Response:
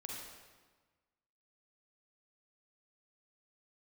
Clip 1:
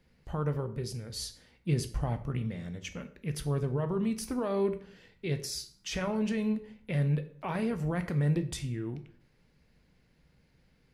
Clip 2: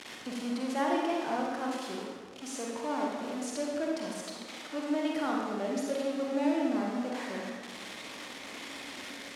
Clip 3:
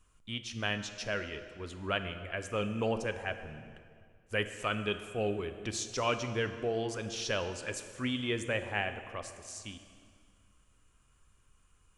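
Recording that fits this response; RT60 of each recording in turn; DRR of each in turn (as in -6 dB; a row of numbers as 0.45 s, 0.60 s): 2; 0.50 s, 1.4 s, 2.1 s; 9.0 dB, -2.0 dB, 8.5 dB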